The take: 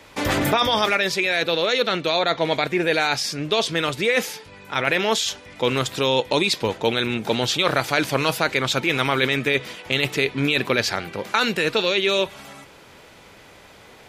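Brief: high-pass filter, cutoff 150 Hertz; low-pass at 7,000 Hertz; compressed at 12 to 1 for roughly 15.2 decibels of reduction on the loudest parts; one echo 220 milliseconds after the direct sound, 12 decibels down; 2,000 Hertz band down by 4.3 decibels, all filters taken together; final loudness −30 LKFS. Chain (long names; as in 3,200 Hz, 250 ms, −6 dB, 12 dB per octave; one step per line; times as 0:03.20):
high-pass filter 150 Hz
low-pass filter 7,000 Hz
parametric band 2,000 Hz −5.5 dB
downward compressor 12 to 1, threshold −32 dBFS
single-tap delay 220 ms −12 dB
level +6 dB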